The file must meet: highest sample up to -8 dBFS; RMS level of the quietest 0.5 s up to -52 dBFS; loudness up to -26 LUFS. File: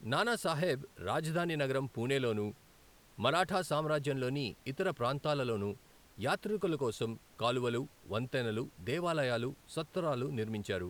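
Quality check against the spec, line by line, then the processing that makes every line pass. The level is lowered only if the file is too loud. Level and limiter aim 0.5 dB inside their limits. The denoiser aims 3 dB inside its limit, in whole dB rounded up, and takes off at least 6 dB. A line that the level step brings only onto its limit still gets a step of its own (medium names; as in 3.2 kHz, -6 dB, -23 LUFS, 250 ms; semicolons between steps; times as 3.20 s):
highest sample -15.5 dBFS: pass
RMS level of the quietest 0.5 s -62 dBFS: pass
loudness -35.0 LUFS: pass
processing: none needed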